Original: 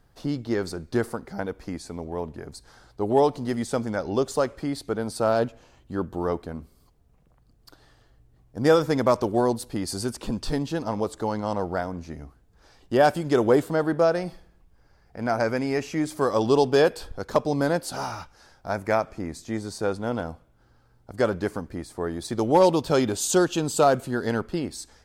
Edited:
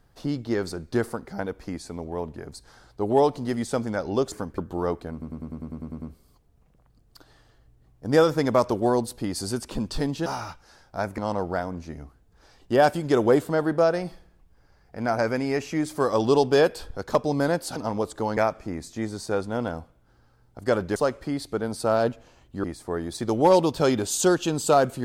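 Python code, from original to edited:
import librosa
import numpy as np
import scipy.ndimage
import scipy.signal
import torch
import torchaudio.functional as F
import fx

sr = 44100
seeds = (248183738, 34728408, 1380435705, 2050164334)

y = fx.edit(x, sr, fx.swap(start_s=4.32, length_s=1.68, other_s=21.48, other_length_s=0.26),
    fx.stutter(start_s=6.54, slice_s=0.1, count=10),
    fx.swap(start_s=10.78, length_s=0.61, other_s=17.97, other_length_s=0.92), tone=tone)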